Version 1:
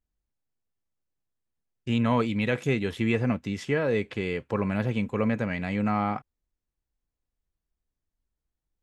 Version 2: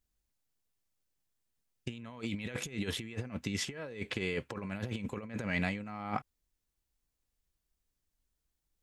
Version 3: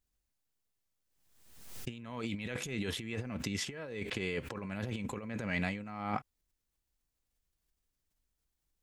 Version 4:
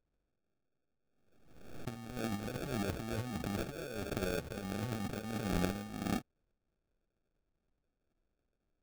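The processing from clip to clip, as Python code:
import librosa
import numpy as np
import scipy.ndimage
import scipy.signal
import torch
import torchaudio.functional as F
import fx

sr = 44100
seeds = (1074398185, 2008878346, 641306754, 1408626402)

y1 = fx.over_compress(x, sr, threshold_db=-31.0, ratio=-0.5)
y1 = fx.high_shelf(y1, sr, hz=2400.0, db=8.0)
y1 = y1 * librosa.db_to_amplitude(-6.0)
y2 = fx.pre_swell(y1, sr, db_per_s=54.0)
y2 = y2 * librosa.db_to_amplitude(-1.5)
y3 = fx.sample_hold(y2, sr, seeds[0], rate_hz=1000.0, jitter_pct=0)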